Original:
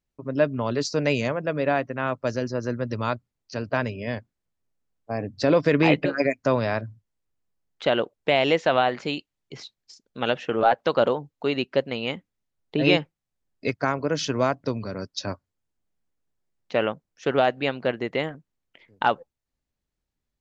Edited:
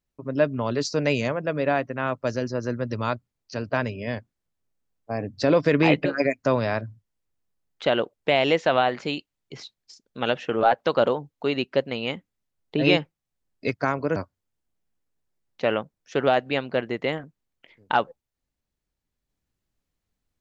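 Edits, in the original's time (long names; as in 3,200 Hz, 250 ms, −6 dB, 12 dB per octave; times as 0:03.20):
0:14.16–0:15.27: remove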